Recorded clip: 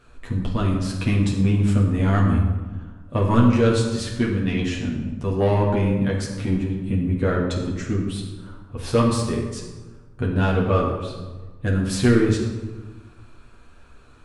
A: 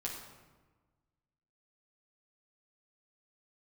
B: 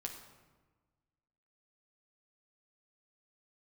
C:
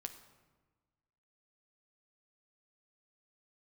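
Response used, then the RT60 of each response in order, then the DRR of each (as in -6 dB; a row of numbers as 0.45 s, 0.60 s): A; 1.3 s, 1.3 s, 1.3 s; -3.5 dB, 1.5 dB, 6.5 dB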